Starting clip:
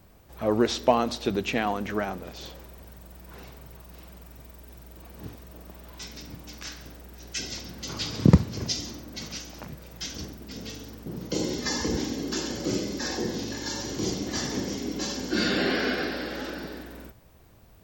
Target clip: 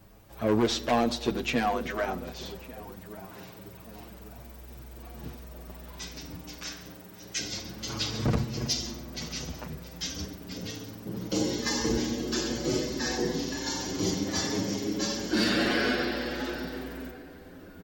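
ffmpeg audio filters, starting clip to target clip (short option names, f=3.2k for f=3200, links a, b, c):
-filter_complex "[0:a]asoftclip=type=hard:threshold=-21dB,asplit=2[a][b];[b]adelay=1145,lowpass=f=1.4k:p=1,volume=-16dB,asplit=2[c][d];[d]adelay=1145,lowpass=f=1.4k:p=1,volume=0.47,asplit=2[e][f];[f]adelay=1145,lowpass=f=1.4k:p=1,volume=0.47,asplit=2[g][h];[h]adelay=1145,lowpass=f=1.4k:p=1,volume=0.47[i];[a][c][e][g][i]amix=inputs=5:normalize=0,asplit=2[j][k];[k]adelay=7,afreqshift=0.27[l];[j][l]amix=inputs=2:normalize=1,volume=3.5dB"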